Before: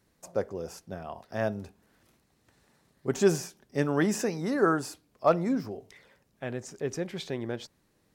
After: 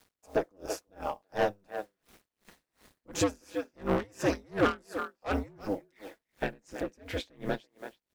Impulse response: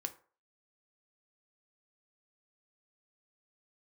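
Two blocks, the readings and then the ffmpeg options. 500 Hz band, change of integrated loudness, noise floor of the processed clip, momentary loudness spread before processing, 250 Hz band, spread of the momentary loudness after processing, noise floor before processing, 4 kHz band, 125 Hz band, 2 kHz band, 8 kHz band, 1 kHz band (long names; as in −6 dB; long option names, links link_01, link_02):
−3.5 dB, −3.5 dB, below −85 dBFS, 15 LU, −4.5 dB, 12 LU, −70 dBFS, 0.0 dB, −5.5 dB, −1.0 dB, −4.0 dB, −1.0 dB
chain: -filter_complex "[0:a]bass=frequency=250:gain=-3,treble=frequency=4000:gain=-11,asplit=2[link_01][link_02];[link_02]alimiter=limit=-17.5dB:level=0:latency=1:release=356,volume=2.5dB[link_03];[link_01][link_03]amix=inputs=2:normalize=0,aecho=1:1:7.1:0.4,aeval=exprs='val(0)*sin(2*PI*100*n/s)':channel_layout=same,highshelf=frequency=3500:gain=11,asplit=2[link_04][link_05];[link_05]adelay=330,highpass=300,lowpass=3400,asoftclip=type=hard:threshold=-14.5dB,volume=-13dB[link_06];[link_04][link_06]amix=inputs=2:normalize=0,asoftclip=type=tanh:threshold=-21.5dB,acrusher=bits=9:mix=0:aa=0.000001,aeval=exprs='val(0)*pow(10,-33*(0.5-0.5*cos(2*PI*2.8*n/s))/20)':channel_layout=same,volume=3.5dB"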